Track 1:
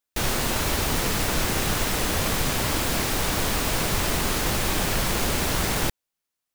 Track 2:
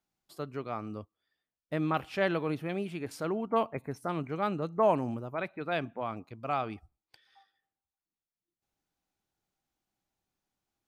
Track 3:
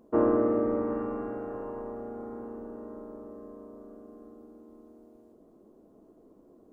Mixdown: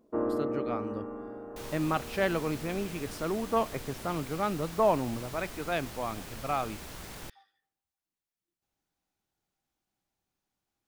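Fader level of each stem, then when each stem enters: -19.5, +0.5, -6.5 dB; 1.40, 0.00, 0.00 s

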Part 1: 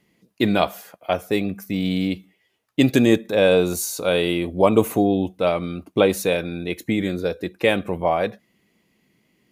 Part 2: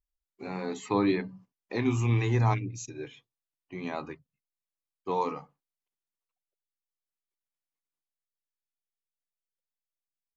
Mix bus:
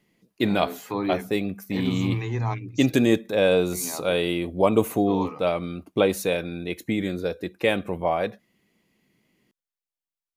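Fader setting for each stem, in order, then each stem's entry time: -3.5, -2.0 dB; 0.00, 0.00 s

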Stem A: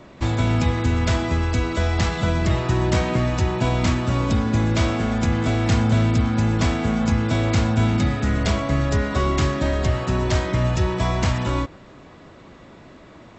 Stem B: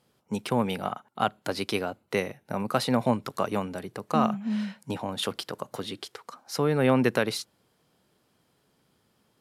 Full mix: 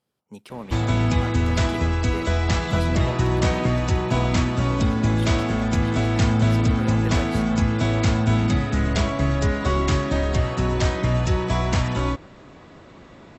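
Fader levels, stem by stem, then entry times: -0.5, -10.5 dB; 0.50, 0.00 s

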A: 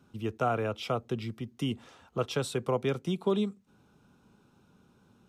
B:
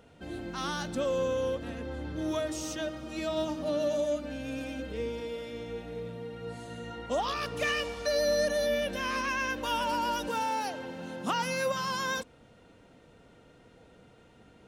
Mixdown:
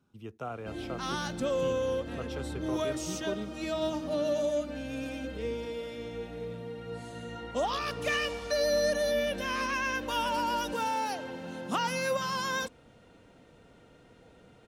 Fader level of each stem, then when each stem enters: -10.0, 0.0 dB; 0.00, 0.45 s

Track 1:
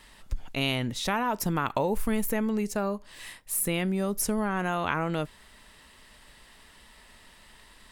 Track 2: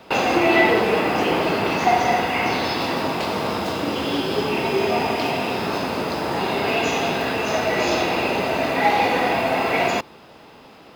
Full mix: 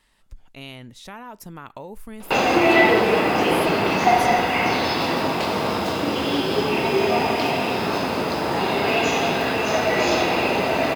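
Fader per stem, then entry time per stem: -10.5, +1.0 dB; 0.00, 2.20 s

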